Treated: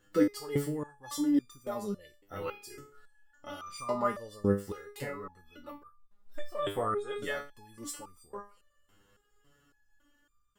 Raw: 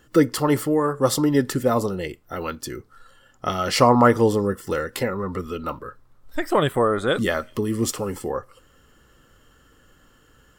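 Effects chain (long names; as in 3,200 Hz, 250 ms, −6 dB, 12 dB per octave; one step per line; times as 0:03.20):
0:02.19–0:03.81: flutter between parallel walls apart 5.2 metres, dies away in 0.36 s
step-sequenced resonator 3.6 Hz 100–1,200 Hz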